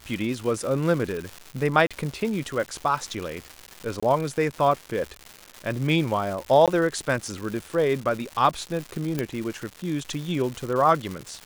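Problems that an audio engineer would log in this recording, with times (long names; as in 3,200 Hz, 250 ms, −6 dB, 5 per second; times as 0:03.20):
surface crackle 320 per second −30 dBFS
0:01.87–0:01.91: drop-out 36 ms
0:04.00–0:04.03: drop-out 25 ms
0:06.66–0:06.68: drop-out 17 ms
0:09.19: click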